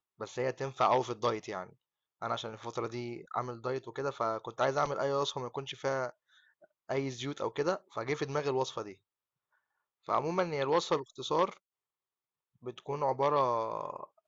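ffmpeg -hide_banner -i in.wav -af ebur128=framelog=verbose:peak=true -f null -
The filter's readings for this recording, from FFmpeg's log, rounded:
Integrated loudness:
  I:         -33.7 LUFS
  Threshold: -44.2 LUFS
Loudness range:
  LRA:         2.7 LU
  Threshold: -55.0 LUFS
  LRA low:   -36.6 LUFS
  LRA high:  -33.9 LUFS
True peak:
  Peak:      -14.0 dBFS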